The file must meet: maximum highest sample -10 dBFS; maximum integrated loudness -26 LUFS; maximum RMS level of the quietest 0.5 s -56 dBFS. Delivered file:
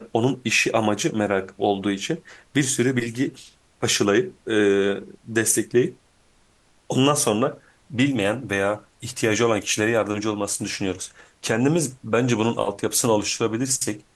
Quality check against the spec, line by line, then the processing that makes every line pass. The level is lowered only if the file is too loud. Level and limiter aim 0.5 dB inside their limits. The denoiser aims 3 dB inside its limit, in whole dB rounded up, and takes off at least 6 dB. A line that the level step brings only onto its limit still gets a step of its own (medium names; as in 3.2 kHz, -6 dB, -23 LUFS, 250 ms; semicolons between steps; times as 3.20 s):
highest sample -5.0 dBFS: fail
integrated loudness -22.5 LUFS: fail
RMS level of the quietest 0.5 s -59 dBFS: pass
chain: trim -4 dB; peak limiter -10.5 dBFS